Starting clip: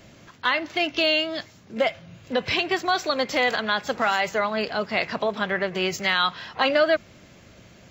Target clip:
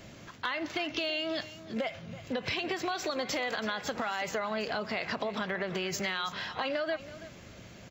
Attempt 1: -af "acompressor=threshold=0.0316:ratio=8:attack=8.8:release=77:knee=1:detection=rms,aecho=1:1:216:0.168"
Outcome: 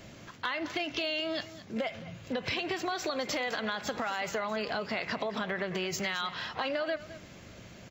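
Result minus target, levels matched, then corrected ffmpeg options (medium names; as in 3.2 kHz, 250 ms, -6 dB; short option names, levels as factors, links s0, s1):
echo 113 ms early
-af "acompressor=threshold=0.0316:ratio=8:attack=8.8:release=77:knee=1:detection=rms,aecho=1:1:329:0.168"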